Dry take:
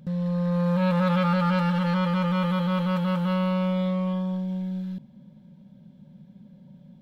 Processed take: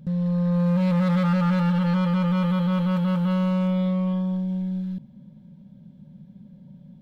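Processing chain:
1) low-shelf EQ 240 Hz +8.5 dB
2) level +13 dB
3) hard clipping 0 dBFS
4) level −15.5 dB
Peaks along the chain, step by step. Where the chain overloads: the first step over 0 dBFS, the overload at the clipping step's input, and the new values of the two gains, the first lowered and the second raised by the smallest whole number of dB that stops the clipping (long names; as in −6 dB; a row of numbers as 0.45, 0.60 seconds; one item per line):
−9.5, +3.5, 0.0, −15.5 dBFS
step 2, 3.5 dB
step 2 +9 dB, step 4 −11.5 dB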